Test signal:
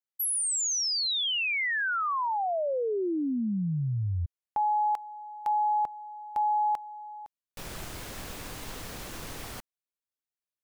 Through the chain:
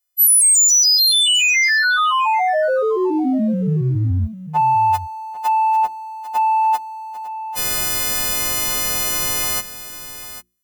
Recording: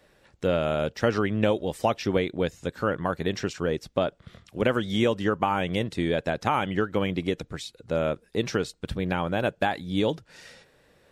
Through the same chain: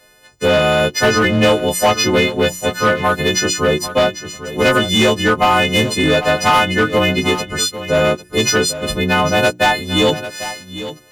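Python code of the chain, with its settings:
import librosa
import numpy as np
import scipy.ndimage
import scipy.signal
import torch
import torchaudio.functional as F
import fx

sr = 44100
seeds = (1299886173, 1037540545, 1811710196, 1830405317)

p1 = fx.freq_snap(x, sr, grid_st=3)
p2 = fx.leveller(p1, sr, passes=1)
p3 = fx.hum_notches(p2, sr, base_hz=60, count=6)
p4 = 10.0 ** (-17.0 / 20.0) * (np.abs((p3 / 10.0 ** (-17.0 / 20.0) + 3.0) % 4.0 - 2.0) - 1.0)
p5 = p3 + (p4 * librosa.db_to_amplitude(-3.0))
p6 = p5 + 10.0 ** (-13.0 / 20.0) * np.pad(p5, (int(797 * sr / 1000.0), 0))[:len(p5)]
y = p6 * librosa.db_to_amplitude(3.5)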